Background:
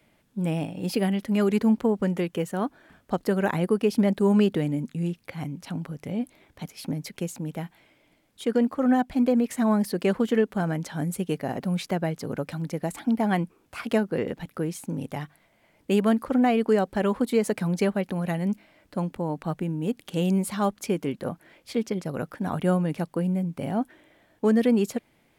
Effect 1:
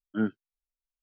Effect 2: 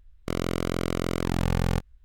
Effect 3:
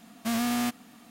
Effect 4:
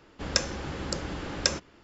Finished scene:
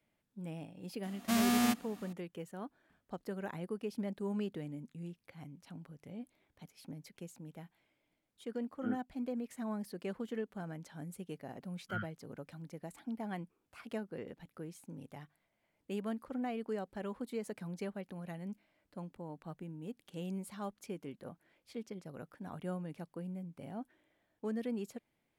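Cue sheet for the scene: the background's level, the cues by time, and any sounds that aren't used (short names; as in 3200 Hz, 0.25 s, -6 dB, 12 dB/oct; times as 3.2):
background -17 dB
1.03 add 3 -2 dB
8.67 add 1 -12.5 dB
11.75 add 1 -0.5 dB + brick-wall FIR band-stop 190–1100 Hz
not used: 2, 4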